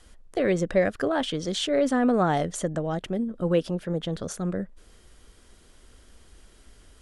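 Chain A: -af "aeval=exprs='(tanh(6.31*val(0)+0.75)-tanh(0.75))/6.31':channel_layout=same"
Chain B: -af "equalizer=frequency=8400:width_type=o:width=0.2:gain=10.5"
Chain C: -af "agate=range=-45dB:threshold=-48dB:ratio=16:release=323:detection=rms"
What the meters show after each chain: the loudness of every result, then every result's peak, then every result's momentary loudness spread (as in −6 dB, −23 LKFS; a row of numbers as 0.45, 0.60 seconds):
−30.0, −26.0, −26.5 LKFS; −13.0, −11.0, −11.0 dBFS; 9, 8, 9 LU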